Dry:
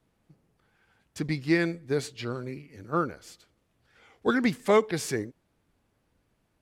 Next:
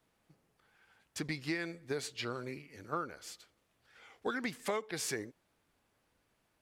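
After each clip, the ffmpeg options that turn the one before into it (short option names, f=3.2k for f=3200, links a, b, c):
-af "lowshelf=f=400:g=-10.5,acompressor=threshold=-34dB:ratio=6,volume=1dB"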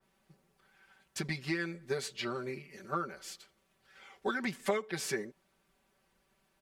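-af "aecho=1:1:5.2:0.93,adynamicequalizer=threshold=0.00355:dfrequency=3200:dqfactor=0.7:tfrequency=3200:tqfactor=0.7:attack=5:release=100:ratio=0.375:range=2.5:mode=cutabove:tftype=highshelf"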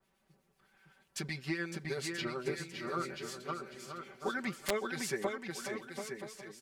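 -filter_complex "[0:a]aecho=1:1:560|980|1295|1531|1708:0.631|0.398|0.251|0.158|0.1,aeval=exprs='(mod(8.91*val(0)+1,2)-1)/8.91':c=same,acrossover=split=2000[a][b];[a]aeval=exprs='val(0)*(1-0.5/2+0.5/2*cos(2*PI*8*n/s))':c=same[c];[b]aeval=exprs='val(0)*(1-0.5/2-0.5/2*cos(2*PI*8*n/s))':c=same[d];[c][d]amix=inputs=2:normalize=0"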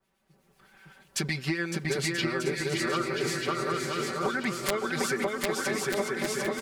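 -filter_complex "[0:a]dynaudnorm=f=270:g=3:m=11dB,asplit=2[a][b];[b]aecho=0:1:750|1238|1554|1760|1894:0.631|0.398|0.251|0.158|0.1[c];[a][c]amix=inputs=2:normalize=0,acompressor=threshold=-25dB:ratio=6"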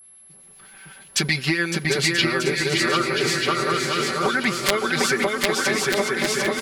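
-filter_complex "[0:a]acrossover=split=4500[a][b];[a]crystalizer=i=4:c=0[c];[c][b]amix=inputs=2:normalize=0,aeval=exprs='val(0)+0.00251*sin(2*PI*11000*n/s)':c=same,volume=6dB"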